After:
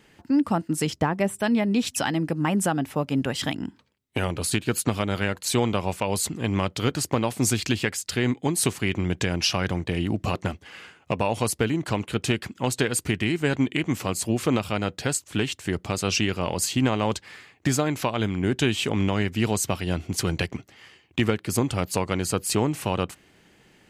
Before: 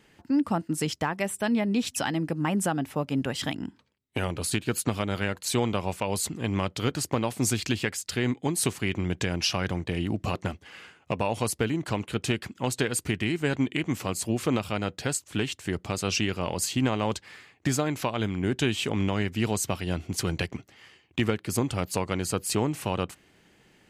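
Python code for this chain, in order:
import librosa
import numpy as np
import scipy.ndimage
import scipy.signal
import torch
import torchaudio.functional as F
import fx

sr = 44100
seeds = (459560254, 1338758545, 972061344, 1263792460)

y = fx.tilt_shelf(x, sr, db=5.0, hz=970.0, at=(0.9, 1.39))
y = F.gain(torch.from_numpy(y), 3.0).numpy()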